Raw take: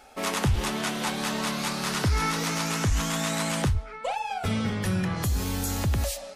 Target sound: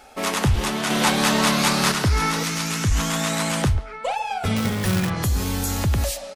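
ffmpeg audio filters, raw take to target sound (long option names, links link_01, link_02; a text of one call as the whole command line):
ffmpeg -i in.wav -filter_complex "[0:a]asettb=1/sr,asplit=3[link_01][link_02][link_03];[link_01]atrim=end=0.904[link_04];[link_02]atrim=start=0.9:end=1.92,asetpts=PTS-STARTPTS,afade=type=in:duration=0.004:curve=qsin,afade=type=out:start_time=1.016:duration=0.004:curve=qsin,acontrast=42[link_05];[link_03]atrim=start=1.916[link_06];[link_04][link_05]acrossfade=duration=0.004:curve1=hsin:curve2=qsin[link_07];[link_07][link_06]acrossfade=duration=0.004:curve1=qsin:curve2=hsin,asettb=1/sr,asplit=3[link_08][link_09][link_10];[link_08]atrim=end=2.434[link_11];[link_09]atrim=start=2.43:end=2.91,asetpts=PTS-STARTPTS,afade=type=in:duration=0.004:curve=qsin,afade=type=out:start_time=0.476:duration=0.004:curve=qsin,equalizer=frequency=680:width=0.7:gain=-7[link_12];[link_10]atrim=start=2.906[link_13];[link_11][link_12]acrossfade=duration=0.004:curve1=hsin:curve2=qsin[link_14];[link_14][link_13]acrossfade=duration=0.004:curve1=qsin:curve2=hsin,asettb=1/sr,asplit=3[link_15][link_16][link_17];[link_15]atrim=end=4.564[link_18];[link_16]atrim=start=4.56:end=5.1,asetpts=PTS-STARTPTS,afade=type=in:duration=0.004:curve=qsin,afade=type=out:start_time=0.536:duration=0.004:curve=qsin,acrusher=bits=2:mode=log:mix=0:aa=0.000001[link_19];[link_17]atrim=start=5.096[link_20];[link_18][link_19]acrossfade=duration=0.004:curve1=hsin:curve2=qsin[link_21];[link_21][link_20]acrossfade=duration=0.004:curve1=qsin:curve2=hsin,asplit=2[link_22][link_23];[link_23]adelay=140,highpass=300,lowpass=3400,asoftclip=type=hard:threshold=-21dB,volume=-17dB[link_24];[link_22][link_24]amix=inputs=2:normalize=0,volume=4.5dB" out.wav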